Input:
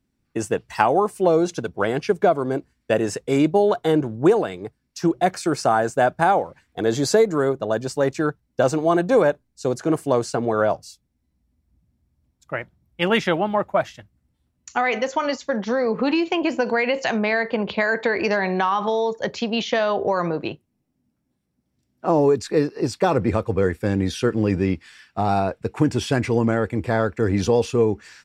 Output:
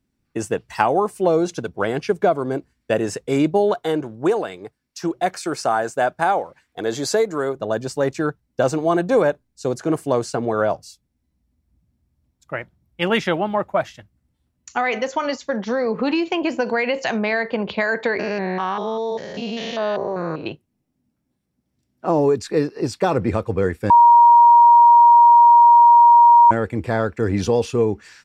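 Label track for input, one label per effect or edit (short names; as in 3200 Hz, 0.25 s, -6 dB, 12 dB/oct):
3.740000	7.560000	low shelf 270 Hz -9 dB
18.190000	20.460000	stepped spectrum every 0.2 s
23.900000	26.510000	bleep 946 Hz -6.5 dBFS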